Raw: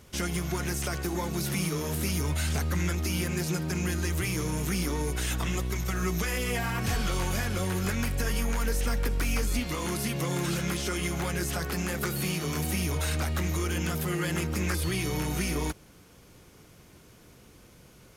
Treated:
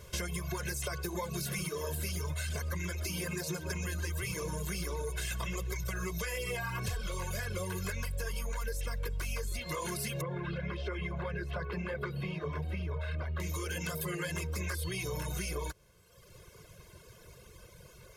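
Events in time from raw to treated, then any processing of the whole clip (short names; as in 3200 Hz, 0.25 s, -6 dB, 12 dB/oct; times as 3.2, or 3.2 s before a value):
1.33–5.83 echo 0.124 s -8.5 dB
10.21–13.4 air absorption 400 m
whole clip: reverb removal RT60 1.2 s; comb 1.9 ms, depth 91%; compressor, threshold -33 dBFS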